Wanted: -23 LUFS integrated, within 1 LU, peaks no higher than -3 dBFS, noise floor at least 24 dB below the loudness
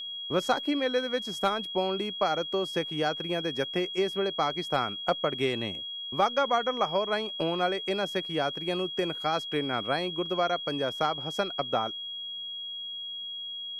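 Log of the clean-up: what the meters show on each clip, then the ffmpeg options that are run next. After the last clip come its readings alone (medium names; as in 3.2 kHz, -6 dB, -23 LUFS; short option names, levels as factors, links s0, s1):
steady tone 3.3 kHz; tone level -35 dBFS; loudness -29.5 LUFS; peak level -12.5 dBFS; loudness target -23.0 LUFS
-> -af "bandreject=f=3300:w=30"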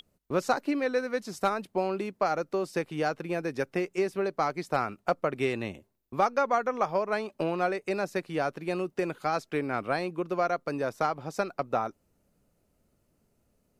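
steady tone not found; loudness -30.5 LUFS; peak level -13.0 dBFS; loudness target -23.0 LUFS
-> -af "volume=2.37"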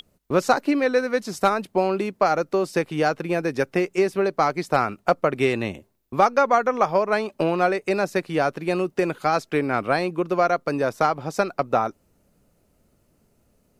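loudness -23.0 LUFS; peak level -5.5 dBFS; noise floor -65 dBFS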